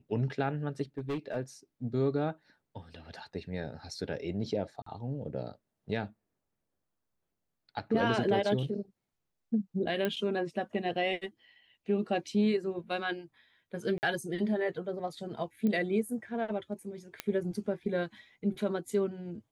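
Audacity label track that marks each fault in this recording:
0.980000	1.370000	clipping −30 dBFS
4.820000	4.860000	drop-out 44 ms
10.050000	10.050000	click −18 dBFS
13.980000	14.030000	drop-out 49 ms
15.670000	15.670000	click −22 dBFS
17.200000	17.200000	click −16 dBFS

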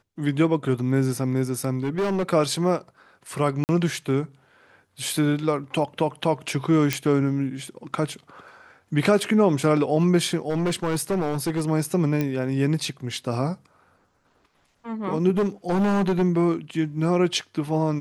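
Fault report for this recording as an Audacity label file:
1.830000	2.290000	clipping −20.5 dBFS
3.640000	3.690000	drop-out 49 ms
6.930000	6.930000	click −6 dBFS
10.490000	11.620000	clipping −20 dBFS
12.210000	12.210000	click −13 dBFS
15.370000	16.230000	clipping −18 dBFS

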